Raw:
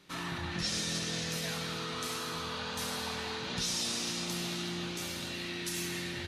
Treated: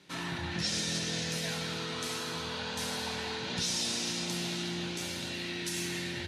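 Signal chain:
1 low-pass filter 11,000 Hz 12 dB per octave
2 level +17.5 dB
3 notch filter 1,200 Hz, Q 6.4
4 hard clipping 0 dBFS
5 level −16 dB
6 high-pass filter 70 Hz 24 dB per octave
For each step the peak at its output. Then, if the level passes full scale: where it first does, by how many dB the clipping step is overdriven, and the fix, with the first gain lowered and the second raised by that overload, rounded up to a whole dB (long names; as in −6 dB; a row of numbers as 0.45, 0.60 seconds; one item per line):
−22.5, −5.0, −5.0, −5.0, −21.0, −21.0 dBFS
no step passes full scale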